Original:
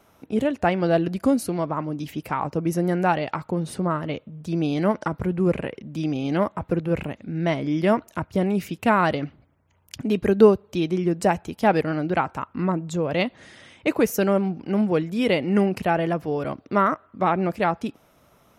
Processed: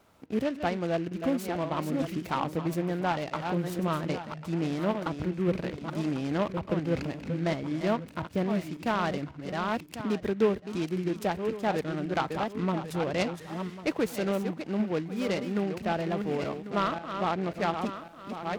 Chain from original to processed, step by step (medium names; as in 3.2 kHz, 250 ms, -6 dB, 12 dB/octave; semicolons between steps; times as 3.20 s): backward echo that repeats 548 ms, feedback 41%, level -8 dB; gain riding within 4 dB 0.5 s; delay time shaken by noise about 1.7 kHz, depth 0.037 ms; trim -7.5 dB